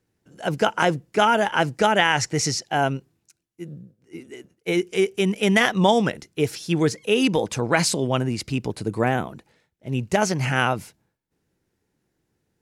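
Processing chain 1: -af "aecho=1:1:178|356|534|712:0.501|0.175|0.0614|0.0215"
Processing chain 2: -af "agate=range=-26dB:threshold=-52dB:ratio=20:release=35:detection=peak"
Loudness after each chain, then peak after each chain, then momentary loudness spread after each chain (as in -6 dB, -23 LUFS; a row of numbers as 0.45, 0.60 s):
-21.0, -22.0 LUFS; -3.0, -4.0 dBFS; 20, 13 LU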